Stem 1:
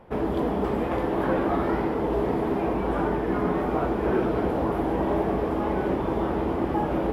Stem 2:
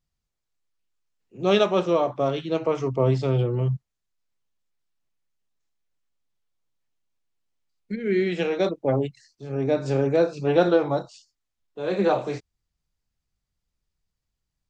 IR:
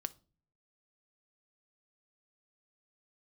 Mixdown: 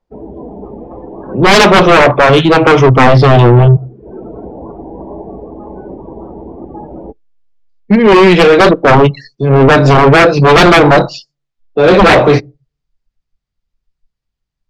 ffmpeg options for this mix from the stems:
-filter_complex "[0:a]volume=0.335,asplit=2[s0][s1];[s1]volume=0.282[s2];[1:a]aeval=exprs='0.473*sin(PI/2*5.62*val(0)/0.473)':c=same,volume=1,asplit=3[s3][s4][s5];[s4]volume=0.335[s6];[s5]apad=whole_len=314336[s7];[s0][s7]sidechaincompress=threshold=0.0355:ratio=8:attack=30:release=390[s8];[2:a]atrim=start_sample=2205[s9];[s2][s6]amix=inputs=2:normalize=0[s10];[s10][s9]afir=irnorm=-1:irlink=0[s11];[s8][s3][s11]amix=inputs=3:normalize=0,lowpass=5200,afftdn=nr=24:nf=-33,acontrast=47"

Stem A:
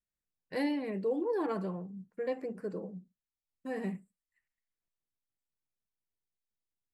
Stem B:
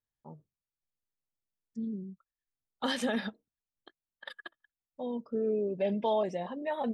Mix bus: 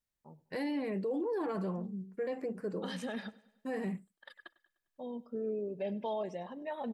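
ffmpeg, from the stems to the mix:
-filter_complex "[0:a]volume=1.19,asplit=2[s0][s1];[1:a]bandreject=f=3500:w=18,volume=0.501,asplit=2[s2][s3];[s3]volume=0.0794[s4];[s1]apad=whole_len=305844[s5];[s2][s5]sidechaincompress=threshold=0.0126:ratio=3:attack=9.4:release=889[s6];[s4]aecho=0:1:100|200|300|400|500|600|700:1|0.5|0.25|0.125|0.0625|0.0312|0.0156[s7];[s0][s6][s7]amix=inputs=3:normalize=0,alimiter=level_in=1.68:limit=0.0631:level=0:latency=1:release=13,volume=0.596"

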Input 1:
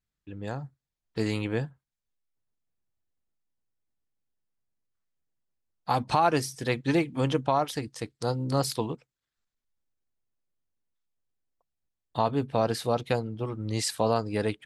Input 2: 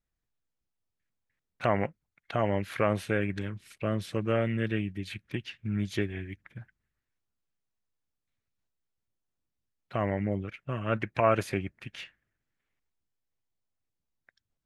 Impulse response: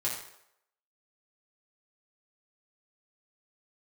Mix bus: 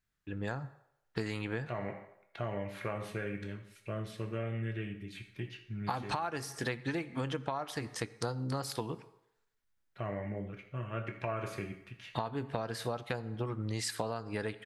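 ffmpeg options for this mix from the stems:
-filter_complex "[0:a]equalizer=f=1600:w=1.5:g=7.5,volume=1,asplit=2[s0][s1];[s1]volume=0.126[s2];[1:a]adelay=50,volume=0.237,asplit=2[s3][s4];[s4]volume=0.596[s5];[2:a]atrim=start_sample=2205[s6];[s2][s5]amix=inputs=2:normalize=0[s7];[s7][s6]afir=irnorm=-1:irlink=0[s8];[s0][s3][s8]amix=inputs=3:normalize=0,acompressor=threshold=0.0282:ratio=20"

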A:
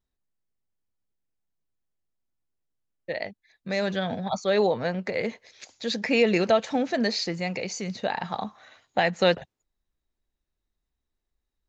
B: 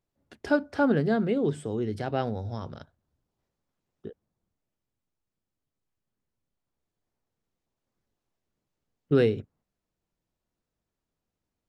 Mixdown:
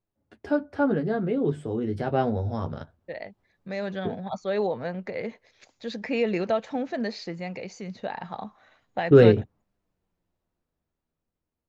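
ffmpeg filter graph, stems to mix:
-filter_complex "[0:a]volume=0.2[s0];[1:a]flanger=delay=9.5:depth=3.1:regen=-26:speed=0.22:shape=sinusoidal,volume=1.26[s1];[s0][s1]amix=inputs=2:normalize=0,highshelf=f=3400:g=-12,dynaudnorm=f=630:g=7:m=3.35"

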